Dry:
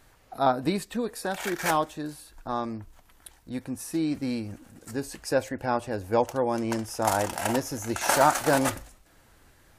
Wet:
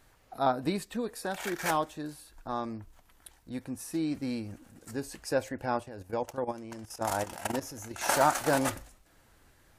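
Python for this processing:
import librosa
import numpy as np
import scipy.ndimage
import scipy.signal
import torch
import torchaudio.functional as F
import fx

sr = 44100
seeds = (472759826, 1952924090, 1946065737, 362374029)

y = fx.level_steps(x, sr, step_db=13, at=(5.82, 7.98), fade=0.02)
y = F.gain(torch.from_numpy(y), -4.0).numpy()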